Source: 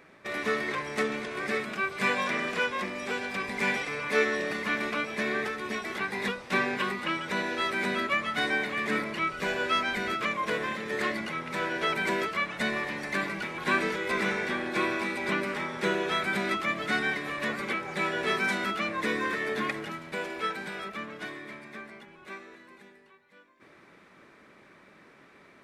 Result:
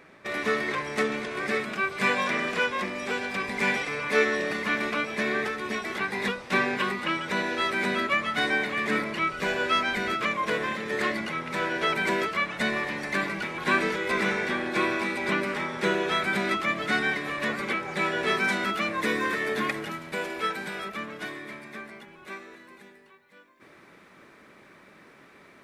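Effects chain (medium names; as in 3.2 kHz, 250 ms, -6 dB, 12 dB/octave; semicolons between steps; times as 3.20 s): treble shelf 12 kHz -2.5 dB, from 18.74 s +10 dB; trim +2.5 dB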